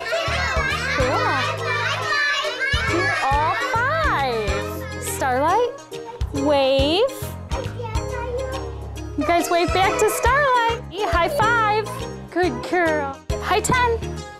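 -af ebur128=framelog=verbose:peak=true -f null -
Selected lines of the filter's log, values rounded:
Integrated loudness:
  I:         -20.6 LUFS
  Threshold: -30.7 LUFS
Loudness range:
  LRA:         3.4 LU
  Threshold: -40.7 LUFS
  LRA low:   -22.6 LUFS
  LRA high:  -19.2 LUFS
True peak:
  Peak:       -8.0 dBFS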